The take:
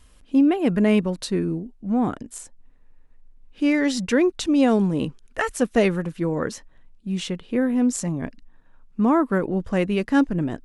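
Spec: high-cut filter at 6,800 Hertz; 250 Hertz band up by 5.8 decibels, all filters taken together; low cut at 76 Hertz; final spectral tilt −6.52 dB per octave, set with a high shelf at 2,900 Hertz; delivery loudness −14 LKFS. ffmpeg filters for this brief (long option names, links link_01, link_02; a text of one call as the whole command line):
ffmpeg -i in.wav -af "highpass=76,lowpass=6800,equalizer=frequency=250:width_type=o:gain=7,highshelf=frequency=2900:gain=-4.5,volume=3.5dB" out.wav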